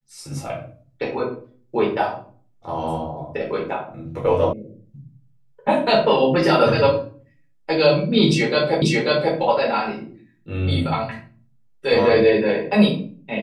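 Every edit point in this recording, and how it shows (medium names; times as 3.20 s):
4.53 s: sound stops dead
8.82 s: repeat of the last 0.54 s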